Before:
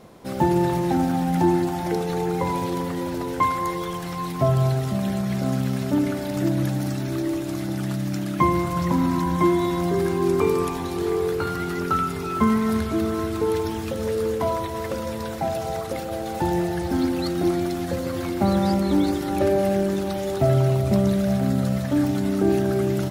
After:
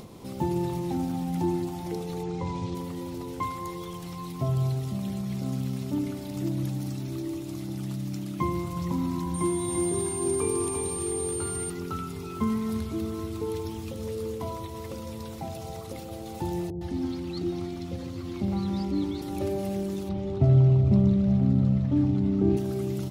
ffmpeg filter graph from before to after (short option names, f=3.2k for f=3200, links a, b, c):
-filter_complex "[0:a]asettb=1/sr,asplit=3[a][b][c];[a]atrim=end=2.234[d];[b]atrim=start=2.23:end=2.75,asetpts=PTS-STARTPTS,afade=t=in:d=0.004:c=qsin,afade=t=out:st=0.516:d=0.004:c=qsin,lowpass=f=7.1k:w=0.5412,lowpass=f=7.1k:w=1.3066,asubboost=boost=8.5:cutoff=220[e];[c]atrim=start=2.746[f];[d][e]acrossfade=d=0.004:c1=hsin:c2=qsin[g];[g][f]acrossfade=d=0.004:c1=qsin:c2=hsin,asettb=1/sr,asplit=3[h][i][j];[h]atrim=end=9.344[k];[i]atrim=start=9.34:end=11.7,asetpts=PTS-STARTPTS,afade=t=in:d=0.004:c=qsin,afade=t=out:st=2.356:d=0.004:c=qsin,aeval=exprs='val(0)+0.0355*sin(2*PI*9000*n/s)':c=same,aecho=1:1:341:0.596,atrim=end_sample=104076[l];[j]atrim=start=11.696[m];[k][l]acrossfade=d=0.004:c1=hsin:c2=qsin[n];[n][m]acrossfade=d=0.004:c1=qsin:c2=hsin,asettb=1/sr,asplit=3[o][p][q];[o]atrim=end=16.704[r];[p]atrim=start=16.7:end=19.22,asetpts=PTS-STARTPTS,afade=t=in:d=0.004:c=qsin,afade=t=out:st=2.516:d=0.004:c=qsin,acrossover=split=6100[s][t];[t]acompressor=threshold=-57dB:ratio=4:attack=1:release=60[u];[s][u]amix=inputs=2:normalize=0,acrossover=split=630[v][w];[w]adelay=110[x];[v][x]amix=inputs=2:normalize=0,atrim=end_sample=111132[y];[q]atrim=start=19.216[z];[r][y]acrossfade=d=0.004:c1=hsin:c2=qsin[aa];[aa][z]acrossfade=d=0.004:c1=qsin:c2=hsin,asettb=1/sr,asplit=3[ab][ac][ad];[ab]atrim=end=20.094[ae];[ac]atrim=start=20.09:end=22.57,asetpts=PTS-STARTPTS,afade=t=in:d=0.004:c=qsin,afade=t=out:st=2.476:d=0.004:c=qsin,lowshelf=f=280:g=9,adynamicsmooth=sensitivity=1:basefreq=2.8k[af];[ad]atrim=start=22.566[ag];[ae][af]acrossfade=d=0.004:c1=hsin:c2=qsin[ah];[ah][ag]acrossfade=d=0.004:c1=qsin:c2=hsin,equalizer=f=100:t=o:w=0.67:g=4,equalizer=f=630:t=o:w=0.67:g=-7,equalizer=f=1.6k:t=o:w=0.67:g=-11,acompressor=mode=upward:threshold=-28dB:ratio=2.5,volume=-7dB"